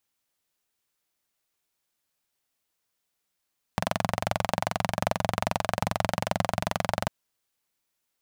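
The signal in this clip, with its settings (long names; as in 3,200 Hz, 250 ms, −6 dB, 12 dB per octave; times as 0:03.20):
pulse-train model of a single-cylinder engine, steady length 3.30 s, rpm 2,700, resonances 110/170/650 Hz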